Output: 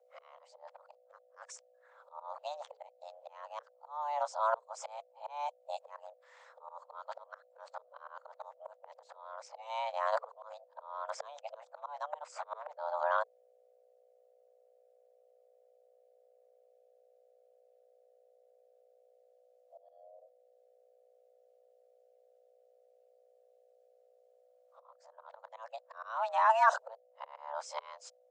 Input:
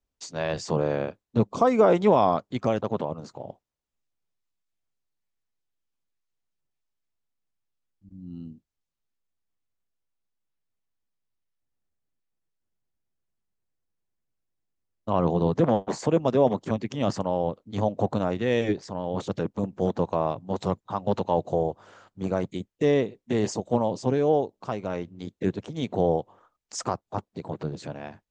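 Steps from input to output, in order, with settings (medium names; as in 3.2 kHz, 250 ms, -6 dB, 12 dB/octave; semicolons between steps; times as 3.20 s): reverse the whole clip; slow attack 758 ms; hum 60 Hz, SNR 26 dB; frequency shift +440 Hz; trim -3 dB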